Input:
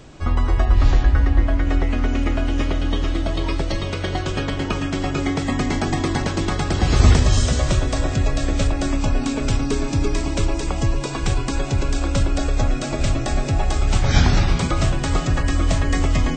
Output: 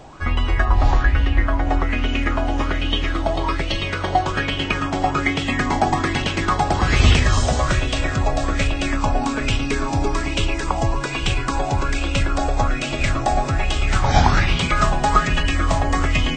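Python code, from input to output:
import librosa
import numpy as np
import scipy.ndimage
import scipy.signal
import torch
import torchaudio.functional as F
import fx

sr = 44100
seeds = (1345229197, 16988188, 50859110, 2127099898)

y = fx.comb(x, sr, ms=4.8, depth=0.54, at=(14.7, 15.46))
y = fx.bell_lfo(y, sr, hz=1.2, low_hz=750.0, high_hz=3000.0, db=15)
y = F.gain(torch.from_numpy(y), -1.5).numpy()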